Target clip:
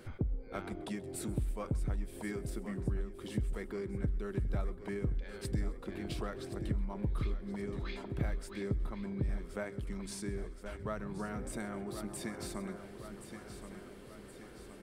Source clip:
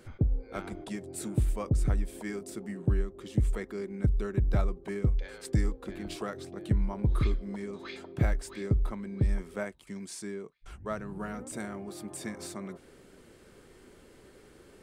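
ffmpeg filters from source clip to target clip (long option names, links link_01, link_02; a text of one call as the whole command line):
ffmpeg -i in.wav -filter_complex "[0:a]asplit=2[link_01][link_02];[link_02]aecho=0:1:1072|2144|3216|4288|5360:0.237|0.119|0.0593|0.0296|0.0148[link_03];[link_01][link_03]amix=inputs=2:normalize=0,acompressor=threshold=-40dB:ratio=2,equalizer=frequency=7000:width_type=o:width=0.62:gain=-5,asplit=2[link_04][link_05];[link_05]asplit=4[link_06][link_07][link_08][link_09];[link_06]adelay=131,afreqshift=-66,volume=-21dB[link_10];[link_07]adelay=262,afreqshift=-132,volume=-26dB[link_11];[link_08]adelay=393,afreqshift=-198,volume=-31.1dB[link_12];[link_09]adelay=524,afreqshift=-264,volume=-36.1dB[link_13];[link_10][link_11][link_12][link_13]amix=inputs=4:normalize=0[link_14];[link_04][link_14]amix=inputs=2:normalize=0,volume=1.5dB" out.wav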